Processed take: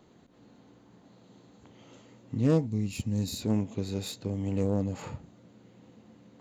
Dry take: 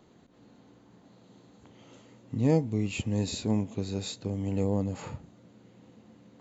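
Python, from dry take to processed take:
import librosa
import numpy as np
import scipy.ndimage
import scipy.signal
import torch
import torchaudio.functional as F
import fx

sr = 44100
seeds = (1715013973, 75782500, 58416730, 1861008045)

y = fx.self_delay(x, sr, depth_ms=0.15)
y = fx.spec_box(y, sr, start_s=2.67, length_s=0.74, low_hz=280.0, high_hz=3700.0, gain_db=-7)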